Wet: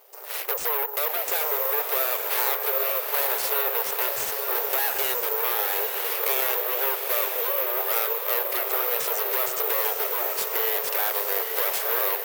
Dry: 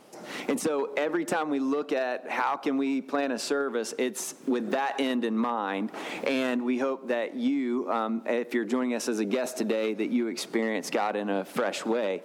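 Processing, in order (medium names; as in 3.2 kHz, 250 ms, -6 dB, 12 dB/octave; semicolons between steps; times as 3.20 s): low-pass 8.3 kHz 24 dB/octave; in parallel at -6.5 dB: hard clipper -32.5 dBFS, distortion -5 dB; on the sum: Chebyshev shaper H 8 -7 dB, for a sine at -14 dBFS; brick-wall FIR high-pass 370 Hz; on a send: echo that smears into a reverb 872 ms, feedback 48%, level -4 dB; on the sum: careless resampling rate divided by 3×, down none, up zero stuff; trim -7 dB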